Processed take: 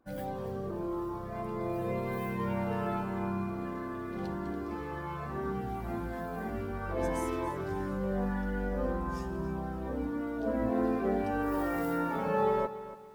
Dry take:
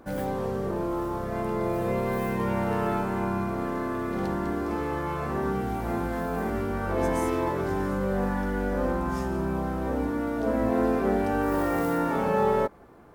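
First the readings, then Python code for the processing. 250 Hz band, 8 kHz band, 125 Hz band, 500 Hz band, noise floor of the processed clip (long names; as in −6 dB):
−6.0 dB, −7.5 dB, −6.0 dB, −6.5 dB, −39 dBFS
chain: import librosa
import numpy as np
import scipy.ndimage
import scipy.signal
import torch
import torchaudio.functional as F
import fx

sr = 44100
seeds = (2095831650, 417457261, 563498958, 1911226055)

y = fx.bin_expand(x, sr, power=1.5)
y = fx.echo_crushed(y, sr, ms=284, feedback_pct=35, bits=9, wet_db=-14)
y = F.gain(torch.from_numpy(y), -3.5).numpy()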